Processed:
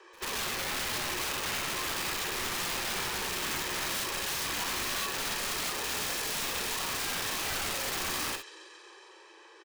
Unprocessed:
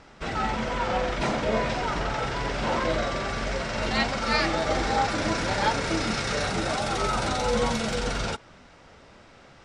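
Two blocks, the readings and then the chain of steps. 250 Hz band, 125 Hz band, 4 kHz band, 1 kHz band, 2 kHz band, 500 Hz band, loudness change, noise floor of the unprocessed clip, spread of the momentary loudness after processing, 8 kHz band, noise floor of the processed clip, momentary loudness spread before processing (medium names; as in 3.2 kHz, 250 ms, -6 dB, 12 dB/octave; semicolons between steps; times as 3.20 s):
-13.5 dB, -14.5 dB, -0.5 dB, -10.0 dB, -4.0 dB, -13.5 dB, -4.5 dB, -52 dBFS, 1 LU, +4.5 dB, -54 dBFS, 5 LU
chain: comb 1.4 ms, depth 73%; small resonant body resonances 1.1/2.7 kHz, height 8 dB; on a send: feedback echo behind a high-pass 137 ms, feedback 78%, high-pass 1.7 kHz, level -16 dB; on the sum: compression 6:1, threshold -23 dBFS, peak gain reduction 7.5 dB; frequency shift +320 Hz; bass shelf 230 Hz +9 dB; integer overflow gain 22.5 dB; peaking EQ 330 Hz -3 dB 2.8 oct; pre-echo 91 ms -23.5 dB; gated-style reverb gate 80 ms rising, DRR 5.5 dB; trim -6 dB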